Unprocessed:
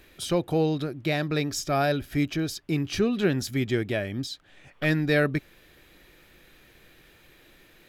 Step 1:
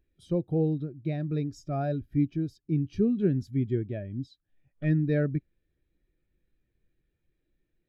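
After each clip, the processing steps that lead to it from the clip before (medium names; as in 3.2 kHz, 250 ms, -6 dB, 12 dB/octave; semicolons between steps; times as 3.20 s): bass shelf 380 Hz +10 dB; spectral contrast expander 1.5:1; trim -8 dB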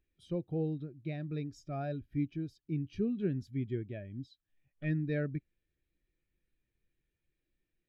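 peaking EQ 2.6 kHz +7 dB 1.4 oct; trim -8 dB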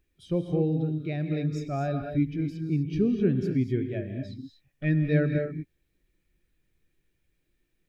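gated-style reverb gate 270 ms rising, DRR 5.5 dB; trim +8 dB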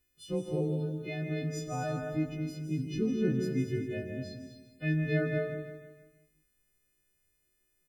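partials quantised in pitch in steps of 3 st; feedback delay 159 ms, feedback 46%, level -8.5 dB; trim -5 dB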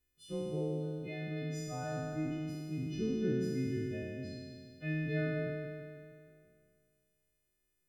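spectral sustain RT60 2.17 s; trim -7 dB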